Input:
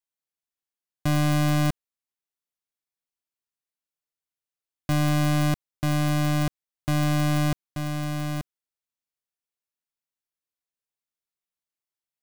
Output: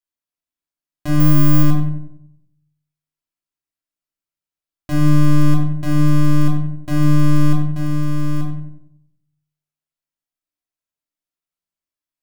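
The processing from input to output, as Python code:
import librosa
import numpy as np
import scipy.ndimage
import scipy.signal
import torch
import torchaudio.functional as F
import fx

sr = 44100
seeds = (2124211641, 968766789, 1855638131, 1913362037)

p1 = fx.resample_bad(x, sr, factor=2, down='filtered', up='zero_stuff', at=(1.2, 1.63))
p2 = p1 + fx.echo_filtered(p1, sr, ms=93, feedback_pct=45, hz=1700.0, wet_db=-7, dry=0)
p3 = fx.room_shoebox(p2, sr, seeds[0], volume_m3=780.0, walls='furnished', distance_m=2.9)
y = p3 * 10.0 ** (-3.5 / 20.0)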